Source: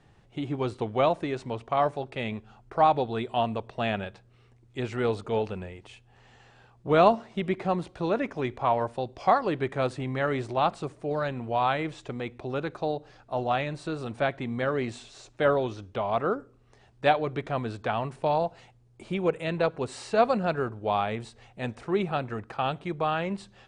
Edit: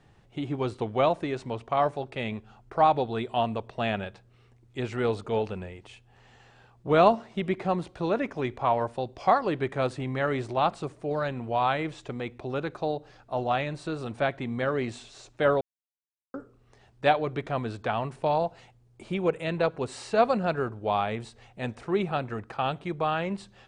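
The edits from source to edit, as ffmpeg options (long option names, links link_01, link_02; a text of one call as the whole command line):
ffmpeg -i in.wav -filter_complex "[0:a]asplit=3[link_01][link_02][link_03];[link_01]atrim=end=15.61,asetpts=PTS-STARTPTS,afade=type=out:start_time=15.606:duration=0.004:curve=hsin[link_04];[link_02]atrim=start=15.61:end=16.34,asetpts=PTS-STARTPTS,volume=0[link_05];[link_03]atrim=start=16.34,asetpts=PTS-STARTPTS,afade=type=in:duration=0.004:curve=hsin[link_06];[link_04][link_05][link_06]concat=n=3:v=0:a=1" out.wav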